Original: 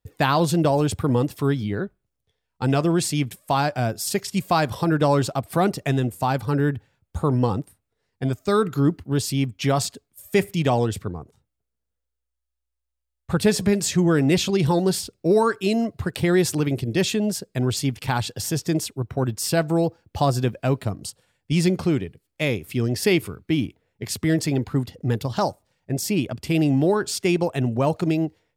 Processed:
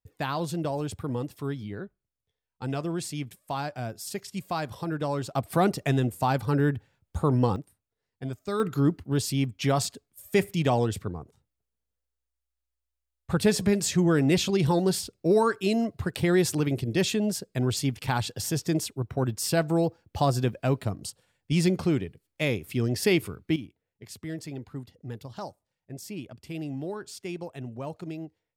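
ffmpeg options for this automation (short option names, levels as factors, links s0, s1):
-af "asetnsamples=n=441:p=0,asendcmd='5.35 volume volume -2.5dB;7.56 volume volume -10dB;8.6 volume volume -3.5dB;23.56 volume volume -15dB',volume=0.299"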